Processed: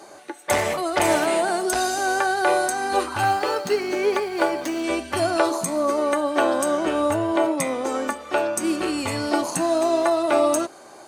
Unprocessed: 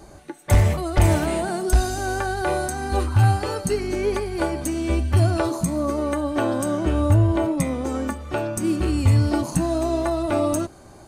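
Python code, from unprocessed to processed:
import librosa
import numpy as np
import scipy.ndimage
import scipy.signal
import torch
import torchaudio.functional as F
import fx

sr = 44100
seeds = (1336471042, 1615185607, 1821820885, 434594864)

y = fx.median_filter(x, sr, points=5, at=(3.24, 4.84))
y = scipy.signal.sosfilt(scipy.signal.butter(2, 440.0, 'highpass', fs=sr, output='sos'), y)
y = fx.high_shelf(y, sr, hz=12000.0, db=-6.5)
y = y * 10.0 ** (5.5 / 20.0)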